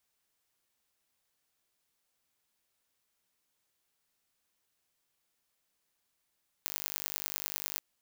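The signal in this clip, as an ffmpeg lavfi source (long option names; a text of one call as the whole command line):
ffmpeg -f lavfi -i "aevalsrc='0.531*eq(mod(n,882),0)*(0.5+0.5*eq(mod(n,4410),0))':duration=1.14:sample_rate=44100" out.wav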